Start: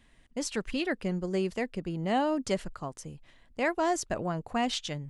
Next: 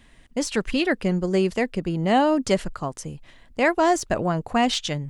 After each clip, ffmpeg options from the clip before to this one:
-af "deesser=0.7,volume=8.5dB"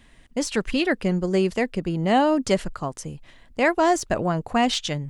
-af anull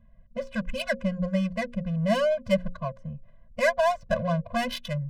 -af "adynamicsmooth=sensitivity=2:basefreq=720,bandreject=f=60:t=h:w=6,bandreject=f=120:t=h:w=6,bandreject=f=180:t=h:w=6,bandreject=f=240:t=h:w=6,bandreject=f=300:t=h:w=6,bandreject=f=360:t=h:w=6,bandreject=f=420:t=h:w=6,bandreject=f=480:t=h:w=6,bandreject=f=540:t=h:w=6,afftfilt=real='re*eq(mod(floor(b*sr/1024/240),2),0)':imag='im*eq(mod(floor(b*sr/1024/240),2),0)':win_size=1024:overlap=0.75"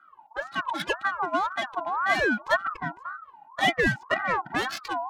-af "aeval=exprs='val(0)*sin(2*PI*1100*n/s+1100*0.25/1.9*sin(2*PI*1.9*n/s))':c=same,volume=2.5dB"

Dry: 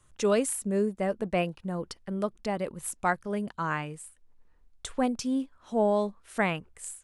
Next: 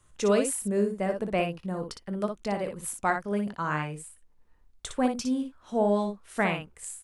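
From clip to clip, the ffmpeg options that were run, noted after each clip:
-af "aecho=1:1:20|59:0.188|0.473"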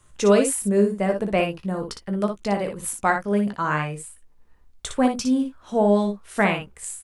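-filter_complex "[0:a]asplit=2[a][b];[b]adelay=15,volume=-10.5dB[c];[a][c]amix=inputs=2:normalize=0,volume=5.5dB"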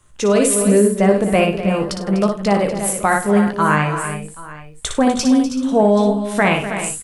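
-filter_complex "[0:a]alimiter=limit=-13dB:level=0:latency=1:release=12,asplit=2[a][b];[b]aecho=0:1:99|248|322|780:0.178|0.224|0.282|0.112[c];[a][c]amix=inputs=2:normalize=0,dynaudnorm=f=120:g=5:m=6dB,volume=2dB"

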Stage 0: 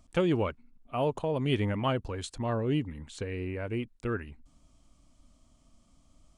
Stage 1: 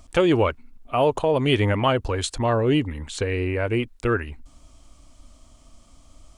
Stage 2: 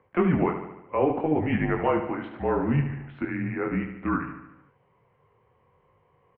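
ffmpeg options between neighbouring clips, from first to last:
-filter_complex "[0:a]equalizer=f=180:t=o:w=1.1:g=-8.5,asplit=2[a][b];[b]alimiter=level_in=1dB:limit=-24dB:level=0:latency=1:release=187,volume=-1dB,volume=1dB[c];[a][c]amix=inputs=2:normalize=0,volume=6dB"
-filter_complex "[0:a]flanger=delay=19:depth=3.9:speed=0.67,asplit=2[a][b];[b]aecho=0:1:73|146|219|292|365|438|511:0.355|0.206|0.119|0.0692|0.0402|0.0233|0.0135[c];[a][c]amix=inputs=2:normalize=0,highpass=f=270:t=q:w=0.5412,highpass=f=270:t=q:w=1.307,lowpass=f=2.3k:t=q:w=0.5176,lowpass=f=2.3k:t=q:w=0.7071,lowpass=f=2.3k:t=q:w=1.932,afreqshift=-160"

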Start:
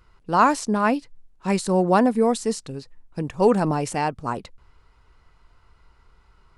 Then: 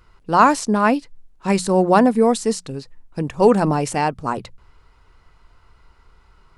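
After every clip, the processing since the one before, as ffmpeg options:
-af "bandreject=f=60:t=h:w=6,bandreject=f=120:t=h:w=6,bandreject=f=180:t=h:w=6,volume=4dB"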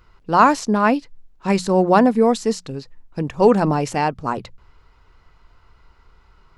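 -af "equalizer=f=9.2k:w=2.8:g=-12"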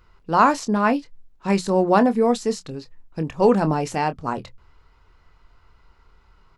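-filter_complex "[0:a]asplit=2[a][b];[b]adelay=25,volume=-11.5dB[c];[a][c]amix=inputs=2:normalize=0,volume=-3dB"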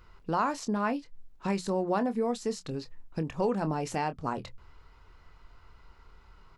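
-af "acompressor=threshold=-31dB:ratio=2.5"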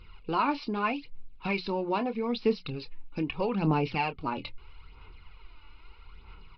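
-af "superequalizer=8b=0.501:11b=0.631:12b=3.16:13b=1.78,aphaser=in_gain=1:out_gain=1:delay=3.5:decay=0.52:speed=0.78:type=sinusoidal,aresample=11025,aresample=44100"

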